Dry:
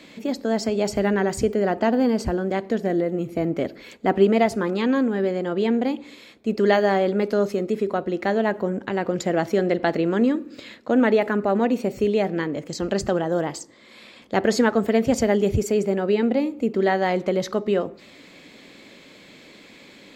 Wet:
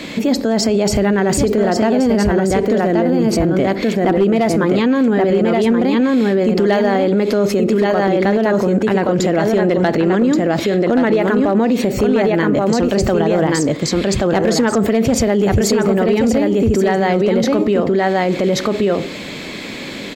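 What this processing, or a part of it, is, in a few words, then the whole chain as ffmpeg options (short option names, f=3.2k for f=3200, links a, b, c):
loud club master: -af "lowshelf=f=190:g=4.5,aecho=1:1:1128:0.596,acompressor=threshold=-19dB:ratio=2.5,asoftclip=type=hard:threshold=-14dB,alimiter=level_in=23.5dB:limit=-1dB:release=50:level=0:latency=1,volume=-6.5dB"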